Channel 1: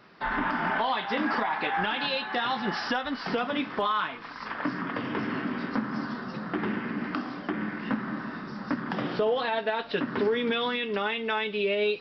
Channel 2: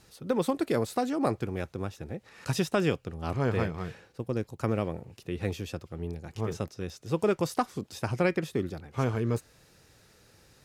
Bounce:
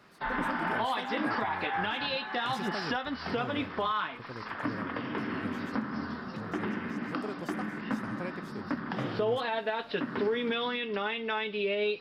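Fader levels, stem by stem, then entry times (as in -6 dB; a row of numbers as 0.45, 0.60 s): -3.5, -13.5 dB; 0.00, 0.00 s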